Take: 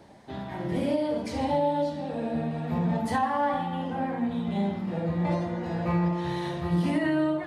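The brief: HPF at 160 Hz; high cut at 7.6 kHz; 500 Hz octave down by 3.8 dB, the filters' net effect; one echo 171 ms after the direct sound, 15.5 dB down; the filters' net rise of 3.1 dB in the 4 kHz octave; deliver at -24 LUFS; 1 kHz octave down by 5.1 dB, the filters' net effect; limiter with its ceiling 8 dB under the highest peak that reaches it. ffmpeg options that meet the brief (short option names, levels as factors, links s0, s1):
-af "highpass=160,lowpass=7600,equalizer=f=500:t=o:g=-3,equalizer=f=1000:t=o:g=-5.5,equalizer=f=4000:t=o:g=4.5,alimiter=level_in=1.12:limit=0.0631:level=0:latency=1,volume=0.891,aecho=1:1:171:0.168,volume=2.99"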